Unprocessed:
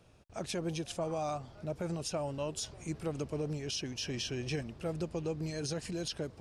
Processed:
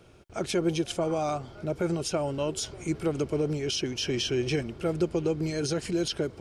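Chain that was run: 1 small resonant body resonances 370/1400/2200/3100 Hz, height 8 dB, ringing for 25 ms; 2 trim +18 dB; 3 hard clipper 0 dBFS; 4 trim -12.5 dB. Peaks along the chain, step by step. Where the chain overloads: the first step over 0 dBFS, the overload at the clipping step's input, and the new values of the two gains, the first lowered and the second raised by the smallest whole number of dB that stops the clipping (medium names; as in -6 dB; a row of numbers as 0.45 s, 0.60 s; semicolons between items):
-21.0 dBFS, -3.0 dBFS, -3.0 dBFS, -15.5 dBFS; nothing clips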